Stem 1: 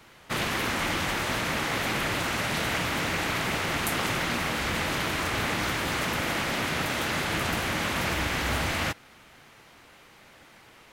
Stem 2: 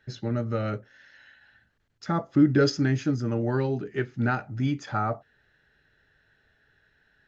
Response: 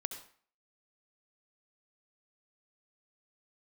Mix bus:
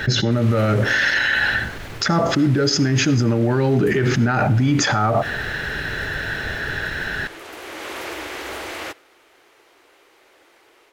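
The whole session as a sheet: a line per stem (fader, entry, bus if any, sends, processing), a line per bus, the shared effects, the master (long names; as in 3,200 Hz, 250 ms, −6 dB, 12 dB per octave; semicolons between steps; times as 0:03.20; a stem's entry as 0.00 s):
−14.0 dB, 0.00 s, send −17.5 dB, low shelf with overshoot 260 Hz −11.5 dB, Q 3; automatic gain control gain up to 11 dB; automatic ducking −13 dB, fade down 1.85 s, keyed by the second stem
−3.0 dB, 0.00 s, send −9 dB, envelope flattener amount 100%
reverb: on, RT60 0.45 s, pre-delay 62 ms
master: brickwall limiter −9.5 dBFS, peak gain reduction 9 dB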